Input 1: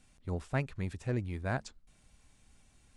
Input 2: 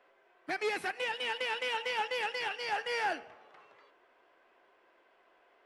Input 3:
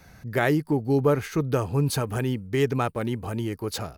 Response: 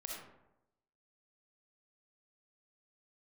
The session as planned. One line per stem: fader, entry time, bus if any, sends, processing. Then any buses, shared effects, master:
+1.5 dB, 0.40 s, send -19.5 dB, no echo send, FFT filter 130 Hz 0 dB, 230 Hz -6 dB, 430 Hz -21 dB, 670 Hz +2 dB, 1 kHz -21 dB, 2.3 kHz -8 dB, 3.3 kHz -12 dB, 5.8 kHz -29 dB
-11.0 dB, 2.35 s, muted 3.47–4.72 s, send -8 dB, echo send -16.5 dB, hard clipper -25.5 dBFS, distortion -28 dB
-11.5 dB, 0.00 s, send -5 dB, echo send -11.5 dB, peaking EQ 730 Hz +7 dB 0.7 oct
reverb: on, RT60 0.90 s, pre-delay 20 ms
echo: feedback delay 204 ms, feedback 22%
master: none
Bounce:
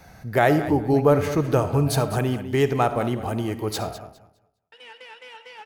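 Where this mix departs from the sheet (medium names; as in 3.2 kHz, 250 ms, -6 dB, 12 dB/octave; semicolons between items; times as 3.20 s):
stem 2: entry 2.35 s -> 3.60 s; stem 3 -11.5 dB -> -0.5 dB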